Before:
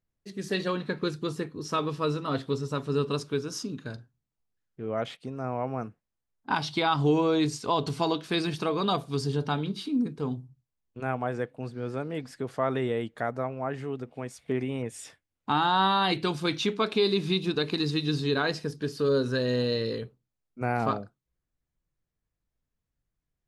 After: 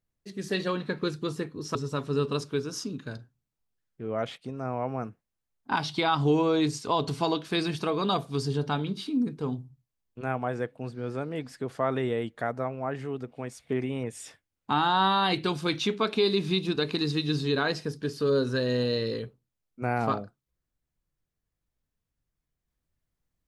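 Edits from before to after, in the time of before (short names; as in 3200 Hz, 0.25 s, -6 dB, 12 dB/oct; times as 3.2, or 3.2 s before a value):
1.75–2.54 cut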